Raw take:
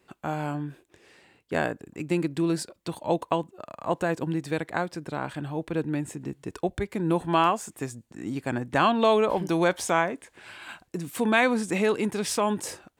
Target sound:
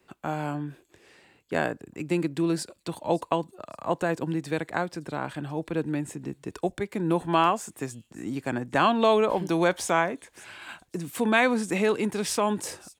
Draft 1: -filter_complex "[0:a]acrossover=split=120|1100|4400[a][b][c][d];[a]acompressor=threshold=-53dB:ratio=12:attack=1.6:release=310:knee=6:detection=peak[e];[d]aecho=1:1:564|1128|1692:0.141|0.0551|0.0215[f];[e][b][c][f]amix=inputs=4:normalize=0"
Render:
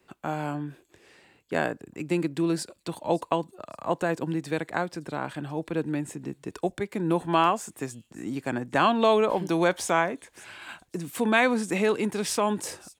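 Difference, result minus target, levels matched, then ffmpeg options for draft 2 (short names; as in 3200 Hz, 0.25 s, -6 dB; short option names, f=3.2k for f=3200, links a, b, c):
compressor: peak gain reduction +6.5 dB
-filter_complex "[0:a]acrossover=split=120|1100|4400[a][b][c][d];[a]acompressor=threshold=-46dB:ratio=12:attack=1.6:release=310:knee=6:detection=peak[e];[d]aecho=1:1:564|1128|1692:0.141|0.0551|0.0215[f];[e][b][c][f]amix=inputs=4:normalize=0"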